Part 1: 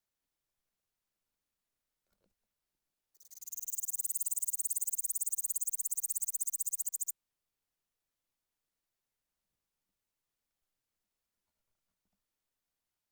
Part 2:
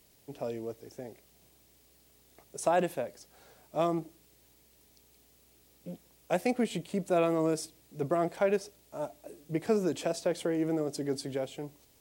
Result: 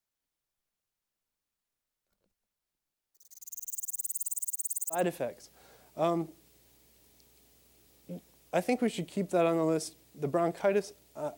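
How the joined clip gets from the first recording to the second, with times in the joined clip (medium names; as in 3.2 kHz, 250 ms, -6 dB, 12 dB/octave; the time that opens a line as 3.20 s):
part 1
4.40–5.04 s: high-pass 290 Hz -> 630 Hz
4.97 s: go over to part 2 from 2.74 s, crossfade 0.14 s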